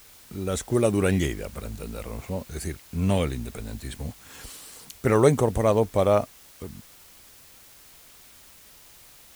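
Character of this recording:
a quantiser's noise floor 8 bits, dither triangular

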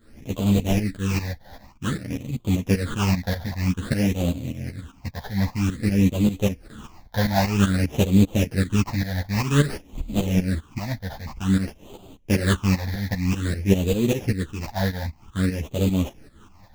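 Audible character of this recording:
aliases and images of a low sample rate 2,200 Hz, jitter 20%
phaser sweep stages 8, 0.52 Hz, lowest notch 350–1,700 Hz
tremolo saw up 5.1 Hz, depth 80%
a shimmering, thickened sound

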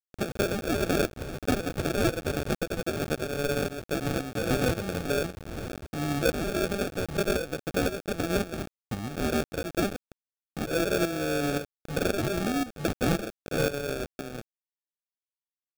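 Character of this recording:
a quantiser's noise floor 6 bits, dither none
tremolo saw up 1.9 Hz, depth 65%
aliases and images of a low sample rate 1,000 Hz, jitter 0%

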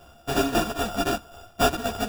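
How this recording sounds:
a buzz of ramps at a fixed pitch in blocks of 64 samples
tremolo saw down 3.8 Hz, depth 55%
aliases and images of a low sample rate 2,100 Hz, jitter 0%
a shimmering, thickened sound

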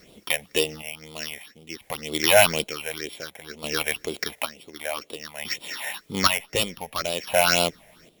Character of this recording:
a buzz of ramps at a fixed pitch in blocks of 8 samples
phaser sweep stages 6, 2 Hz, lowest notch 320–1,700 Hz
a quantiser's noise floor 12 bits, dither triangular
chopped level 0.55 Hz, depth 65%, duty 45%

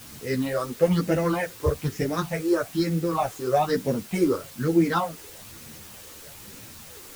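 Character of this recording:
phaser sweep stages 6, 1.1 Hz, lowest notch 180–1,100 Hz
a quantiser's noise floor 8 bits, dither triangular
a shimmering, thickened sound

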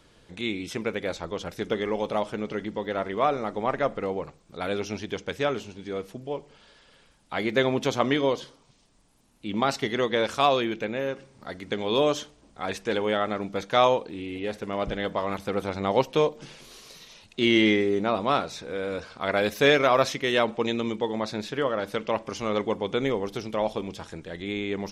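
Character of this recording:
background noise floor −59 dBFS
spectral slope −3.0 dB per octave

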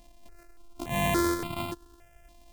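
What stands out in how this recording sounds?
a buzz of ramps at a fixed pitch in blocks of 128 samples
notches that jump at a steady rate 3.5 Hz 390–1,700 Hz

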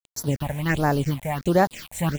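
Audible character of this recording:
a quantiser's noise floor 6 bits, dither none
phaser sweep stages 6, 1.4 Hz, lowest notch 320–2,800 Hz

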